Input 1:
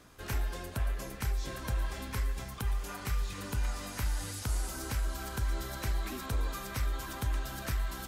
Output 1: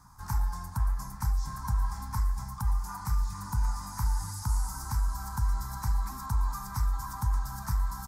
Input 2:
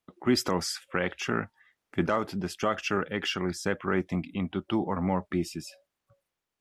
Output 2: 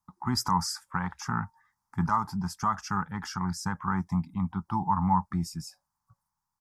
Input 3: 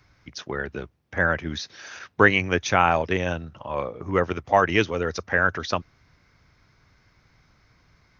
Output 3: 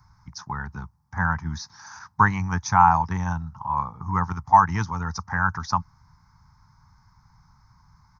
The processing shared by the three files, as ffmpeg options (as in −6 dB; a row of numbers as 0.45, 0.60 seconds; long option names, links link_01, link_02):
-af "firequalizer=gain_entry='entry(170,0);entry(330,-21);entry(560,-28);entry(880,7);entry(1400,-6);entry(2800,-27);entry(5000,-4)':delay=0.05:min_phase=1,volume=4.5dB"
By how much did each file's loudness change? +3.5, 0.0, +0.5 LU